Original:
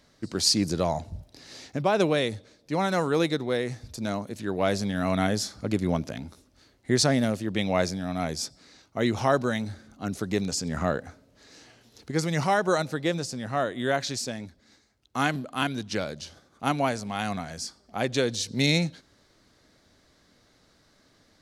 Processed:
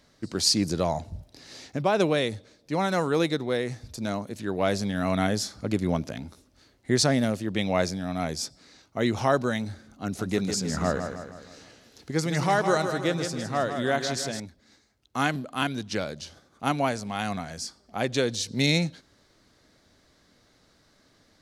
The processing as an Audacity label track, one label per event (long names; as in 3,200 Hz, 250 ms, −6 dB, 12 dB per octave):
10.030000	14.400000	repeating echo 158 ms, feedback 49%, level −7.5 dB